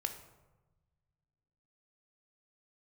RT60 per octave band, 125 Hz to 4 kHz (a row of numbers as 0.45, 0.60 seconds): 2.5, 2.0, 1.2, 1.1, 0.80, 0.60 seconds